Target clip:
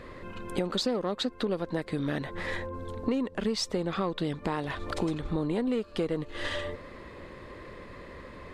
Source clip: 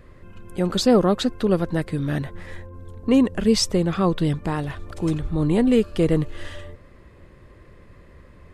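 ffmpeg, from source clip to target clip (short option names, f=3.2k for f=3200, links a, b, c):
-af "aeval=exprs='0.531*(cos(1*acos(clip(val(0)/0.531,-1,1)))-cos(1*PI/2))+0.0168*(cos(8*acos(clip(val(0)/0.531,-1,1)))-cos(8*PI/2))':c=same,equalizer=f=250:t=o:w=1:g=7,equalizer=f=500:t=o:w=1:g=8,equalizer=f=1k:t=o:w=1:g=9,equalizer=f=2k:t=o:w=1:g=7,equalizer=f=4k:t=o:w=1:g=11,equalizer=f=8k:t=o:w=1:g=4,acompressor=threshold=-24dB:ratio=8,volume=-3dB"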